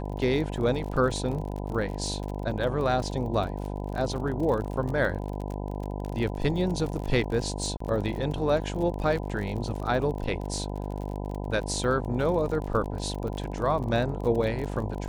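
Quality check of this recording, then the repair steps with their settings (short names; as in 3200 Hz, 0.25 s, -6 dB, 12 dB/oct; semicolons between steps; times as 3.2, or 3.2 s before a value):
buzz 50 Hz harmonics 20 -33 dBFS
crackle 39/s -33 dBFS
7.77–7.8 gap 34 ms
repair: de-click; de-hum 50 Hz, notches 20; interpolate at 7.77, 34 ms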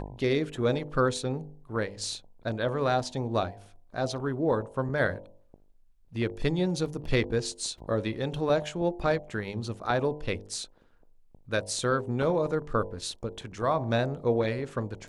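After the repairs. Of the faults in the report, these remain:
none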